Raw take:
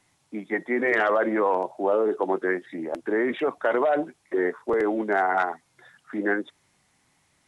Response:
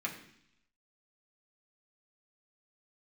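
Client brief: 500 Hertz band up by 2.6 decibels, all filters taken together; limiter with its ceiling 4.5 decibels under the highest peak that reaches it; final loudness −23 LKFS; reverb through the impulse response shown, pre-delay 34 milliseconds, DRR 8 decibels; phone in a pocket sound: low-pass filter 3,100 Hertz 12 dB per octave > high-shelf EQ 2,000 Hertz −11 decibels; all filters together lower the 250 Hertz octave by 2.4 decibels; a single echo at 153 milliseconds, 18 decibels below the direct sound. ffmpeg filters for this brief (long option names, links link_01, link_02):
-filter_complex "[0:a]equalizer=frequency=250:width_type=o:gain=-7,equalizer=frequency=500:width_type=o:gain=6,alimiter=limit=-13.5dB:level=0:latency=1,aecho=1:1:153:0.126,asplit=2[link_01][link_02];[1:a]atrim=start_sample=2205,adelay=34[link_03];[link_02][link_03]afir=irnorm=-1:irlink=0,volume=-11dB[link_04];[link_01][link_04]amix=inputs=2:normalize=0,lowpass=3100,highshelf=frequency=2000:gain=-11,volume=2.5dB"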